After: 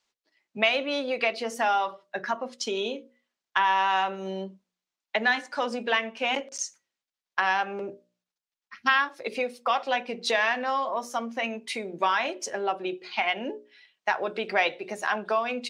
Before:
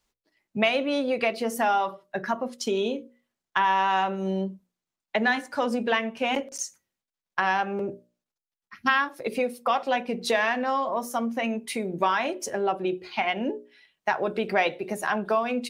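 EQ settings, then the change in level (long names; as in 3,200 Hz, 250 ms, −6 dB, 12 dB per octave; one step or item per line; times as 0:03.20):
high-frequency loss of the air 140 metres
RIAA equalisation recording
mains-hum notches 60/120/180 Hz
0.0 dB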